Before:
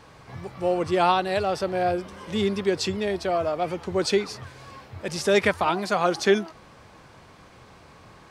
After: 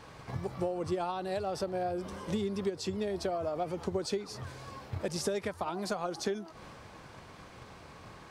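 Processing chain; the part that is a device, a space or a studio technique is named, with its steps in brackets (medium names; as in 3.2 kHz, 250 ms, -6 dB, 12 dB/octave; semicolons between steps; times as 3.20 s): drum-bus smash (transient shaper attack +7 dB, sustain +3 dB; compression 8:1, threshold -27 dBFS, peak gain reduction 17.5 dB; saturation -16.5 dBFS, distortion -26 dB); dynamic bell 2.3 kHz, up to -7 dB, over -50 dBFS, Q 0.77; trim -1.5 dB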